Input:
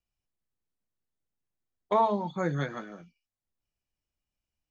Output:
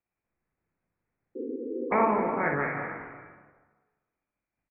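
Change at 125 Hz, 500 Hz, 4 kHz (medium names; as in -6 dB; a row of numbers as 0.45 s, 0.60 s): -4.5 dB, +2.0 dB, under -20 dB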